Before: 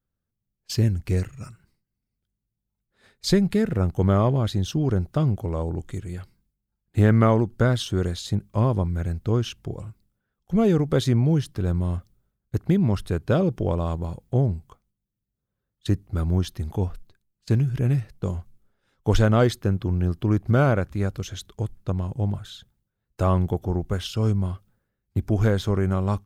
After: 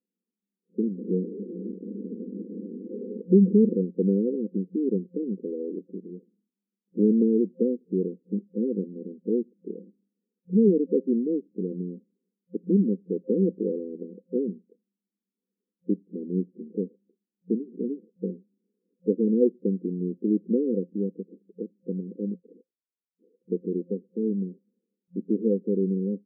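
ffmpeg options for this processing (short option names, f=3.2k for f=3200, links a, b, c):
-filter_complex "[0:a]asettb=1/sr,asplit=3[a][b][c];[a]atrim=end=0.984[d];[b]atrim=start=0.98:end=3.83,asetpts=PTS-STARTPTS,afade=t=in:d=0.004:c=qsin,afade=t=out:st=2.846:d=0.004:c=qsin,aeval=exprs='val(0)+0.5*0.0841*sgn(val(0))':c=same[e];[c]atrim=start=3.826[f];[d][e]acrossfade=d=0.004:c1=hsin:c2=qsin[g];[g][f]acrossfade=d=0.004:c1=qsin:c2=hsin,asettb=1/sr,asplit=3[h][i][j];[h]atrim=end=22.354[k];[i]atrim=start=22.35:end=23.48,asetpts=PTS-STARTPTS,afade=t=in:d=0.004:c=qsin,afade=t=out:st=1.126:d=0.004:c=qsin,lowpass=f=3.3k:t=q:w=0.5098,lowpass=f=3.3k:t=q:w=0.6013,lowpass=f=3.3k:t=q:w=0.9,lowpass=f=3.3k:t=q:w=2.563,afreqshift=-3900[l];[j]atrim=start=23.476[m];[k][l]acrossfade=d=0.004:c1=hsin:c2=qsin[n];[n][m]acrossfade=d=0.004:c1=qsin:c2=hsin,afftfilt=real='re*between(b*sr/4096,180,520)':imag='im*between(b*sr/4096,180,520)':win_size=4096:overlap=0.75,volume=1dB"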